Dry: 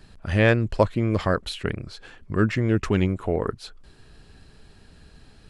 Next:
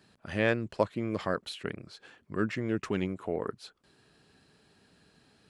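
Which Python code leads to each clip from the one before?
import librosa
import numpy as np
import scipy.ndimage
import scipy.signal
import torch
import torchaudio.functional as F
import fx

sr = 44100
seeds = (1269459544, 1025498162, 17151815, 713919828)

y = scipy.signal.sosfilt(scipy.signal.butter(2, 160.0, 'highpass', fs=sr, output='sos'), x)
y = y * 10.0 ** (-7.5 / 20.0)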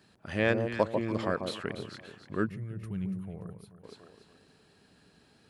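y = fx.echo_alternate(x, sr, ms=144, hz=990.0, feedback_pct=57, wet_db=-5)
y = fx.spec_box(y, sr, start_s=2.47, length_s=1.37, low_hz=210.0, high_hz=8800.0, gain_db=-17)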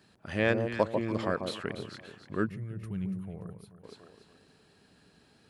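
y = x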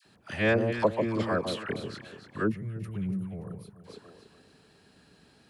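y = fx.dispersion(x, sr, late='lows', ms=55.0, hz=1000.0)
y = y * 10.0 ** (2.5 / 20.0)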